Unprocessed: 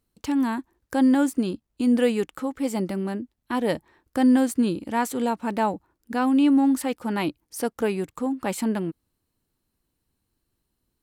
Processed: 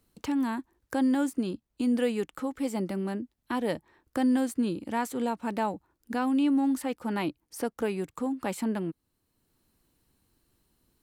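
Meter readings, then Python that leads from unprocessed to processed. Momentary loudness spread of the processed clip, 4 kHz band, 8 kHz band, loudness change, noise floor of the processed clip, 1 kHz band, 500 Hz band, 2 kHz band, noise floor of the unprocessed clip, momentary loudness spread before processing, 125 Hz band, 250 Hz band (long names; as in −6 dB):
10 LU, −5.5 dB, −6.5 dB, −5.5 dB, −78 dBFS, −5.5 dB, −5.0 dB, −5.0 dB, −79 dBFS, 11 LU, −4.5 dB, −5.5 dB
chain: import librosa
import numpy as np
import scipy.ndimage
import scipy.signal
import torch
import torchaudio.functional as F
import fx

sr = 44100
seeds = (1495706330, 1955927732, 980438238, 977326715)

y = fx.band_squash(x, sr, depth_pct=40)
y = y * 10.0 ** (-5.5 / 20.0)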